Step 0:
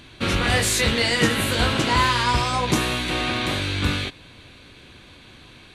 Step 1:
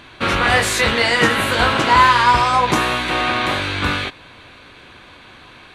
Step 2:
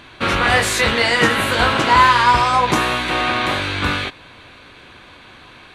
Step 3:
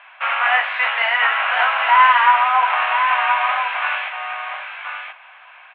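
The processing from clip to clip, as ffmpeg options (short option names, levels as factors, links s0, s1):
-af "equalizer=f=1100:w=0.49:g=11.5,volume=0.841"
-af anull
-af "asuperpass=centerf=1400:order=12:qfactor=0.61,aecho=1:1:1025:0.447"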